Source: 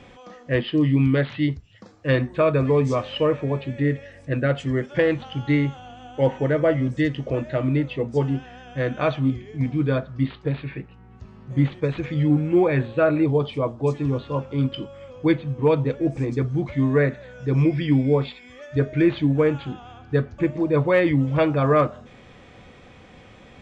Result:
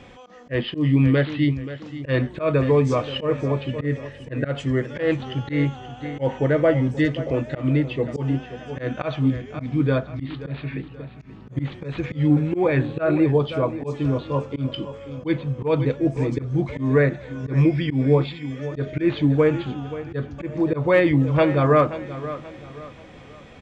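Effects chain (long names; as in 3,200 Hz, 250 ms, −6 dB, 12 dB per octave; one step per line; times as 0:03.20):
repeating echo 530 ms, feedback 37%, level −14 dB
volume swells 121 ms
level +1.5 dB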